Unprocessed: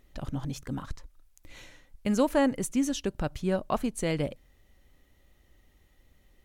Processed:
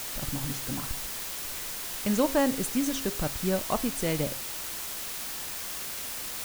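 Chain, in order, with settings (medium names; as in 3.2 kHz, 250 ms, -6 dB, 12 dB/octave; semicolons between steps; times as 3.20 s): word length cut 6-bit, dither triangular; de-hum 135.1 Hz, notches 37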